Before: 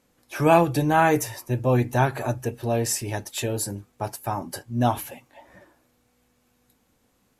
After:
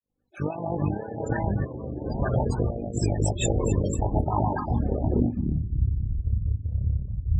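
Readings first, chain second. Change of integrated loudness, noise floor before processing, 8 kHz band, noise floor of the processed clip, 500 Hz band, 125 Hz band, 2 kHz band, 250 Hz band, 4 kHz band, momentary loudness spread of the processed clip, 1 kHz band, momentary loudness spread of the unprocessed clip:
-3.0 dB, -67 dBFS, -6.0 dB, -44 dBFS, -5.0 dB, +3.0 dB, -10.5 dB, -1.0 dB, -5.5 dB, 6 LU, -7.5 dB, 13 LU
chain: opening faded in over 1.35 s; echo with dull and thin repeats by turns 0.132 s, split 940 Hz, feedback 56%, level -2 dB; negative-ratio compressor -27 dBFS, ratio -0.5; AM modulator 50 Hz, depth 75%; low shelf 120 Hz +8.5 dB; echoes that change speed 0.247 s, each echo -7 st, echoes 3; loudest bins only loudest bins 32; low-pass sweep 7900 Hz -> 100 Hz, 3.8–5.74; dispersion highs, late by 62 ms, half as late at 2500 Hz; gain +2 dB

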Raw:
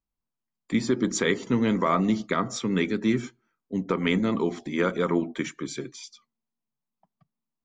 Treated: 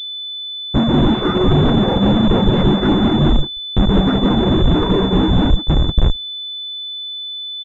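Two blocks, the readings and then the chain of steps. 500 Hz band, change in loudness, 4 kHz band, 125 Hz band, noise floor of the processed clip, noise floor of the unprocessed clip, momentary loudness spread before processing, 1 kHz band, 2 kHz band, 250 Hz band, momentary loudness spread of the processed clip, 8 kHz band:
+9.0 dB, +10.0 dB, +18.5 dB, +17.0 dB, -28 dBFS, under -85 dBFS, 12 LU, +9.0 dB, +2.0 dB, +11.0 dB, 10 LU, under -10 dB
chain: inharmonic rescaling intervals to 80%; low shelf 450 Hz -9 dB; rotary speaker horn 0.6 Hz; shoebox room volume 720 m³, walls furnished, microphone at 5.2 m; Schmitt trigger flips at -30 dBFS; tilt -1.5 dB/oct; outdoor echo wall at 30 m, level -7 dB; AGC gain up to 14.5 dB; reverb removal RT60 0.51 s; gate -14 dBFS, range -48 dB; pulse-width modulation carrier 3500 Hz

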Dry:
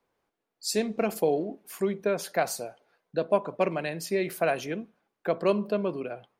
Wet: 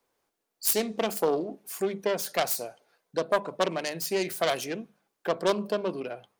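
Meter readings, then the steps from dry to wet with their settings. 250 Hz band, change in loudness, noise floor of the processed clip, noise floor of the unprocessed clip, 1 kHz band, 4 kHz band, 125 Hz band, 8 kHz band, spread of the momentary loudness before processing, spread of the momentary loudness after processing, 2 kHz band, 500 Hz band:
-2.5 dB, 0.0 dB, -82 dBFS, -84 dBFS, +1.0 dB, +5.0 dB, -4.0 dB, +4.5 dB, 10 LU, 10 LU, +0.5 dB, -1.0 dB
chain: self-modulated delay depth 0.27 ms; tone controls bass -3 dB, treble +9 dB; notches 50/100/150/200 Hz

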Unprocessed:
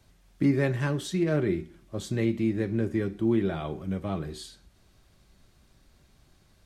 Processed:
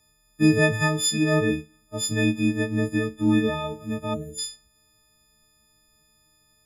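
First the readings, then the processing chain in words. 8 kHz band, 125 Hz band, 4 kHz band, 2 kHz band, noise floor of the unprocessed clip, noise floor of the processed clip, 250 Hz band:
+16.0 dB, +2.5 dB, +13.0 dB, +10.5 dB, -62 dBFS, -64 dBFS, +4.0 dB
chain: frequency quantiser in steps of 6 st; spectral gain 4.14–4.38, 730–5600 Hz -19 dB; upward expander 1.5:1, over -47 dBFS; gain +6 dB

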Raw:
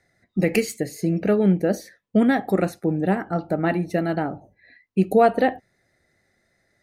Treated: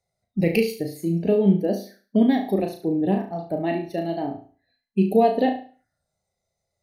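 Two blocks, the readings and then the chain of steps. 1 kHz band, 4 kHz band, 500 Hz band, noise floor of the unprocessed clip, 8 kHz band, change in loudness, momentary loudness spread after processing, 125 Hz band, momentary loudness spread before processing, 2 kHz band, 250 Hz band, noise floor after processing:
-2.5 dB, +0.5 dB, -1.0 dB, -71 dBFS, n/a, -0.5 dB, 11 LU, -1.5 dB, 10 LU, -6.0 dB, 0.0 dB, -81 dBFS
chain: envelope phaser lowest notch 290 Hz, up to 1400 Hz, full sweep at -24 dBFS; spectral noise reduction 10 dB; flutter echo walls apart 6.1 m, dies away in 0.39 s

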